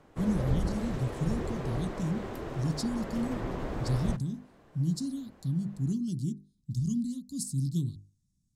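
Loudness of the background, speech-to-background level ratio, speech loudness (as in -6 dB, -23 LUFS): -37.0 LUFS, 3.5 dB, -33.5 LUFS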